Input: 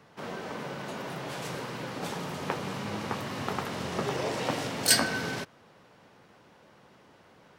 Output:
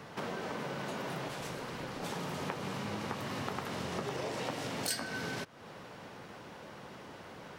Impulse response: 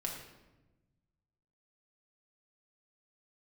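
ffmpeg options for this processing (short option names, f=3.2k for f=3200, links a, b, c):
-filter_complex "[0:a]acompressor=threshold=-46dB:ratio=4,asettb=1/sr,asplit=3[a][b][c];[a]atrim=end=1.284[d];[b]atrim=start=1.28:end=2.04,asetpts=PTS-STARTPTS,afade=t=in:d=0.004:c=qsin,afade=t=out:st=0.756:d=0.004:c=qsin,tremolo=f=250:d=0.571[e];[c]atrim=start=2.036[f];[d][e]acrossfade=d=0.004:c1=hsin:c2=qsin[g];[g][f]acrossfade=d=0.004:c1=qsin:c2=hsin,volume=8.5dB"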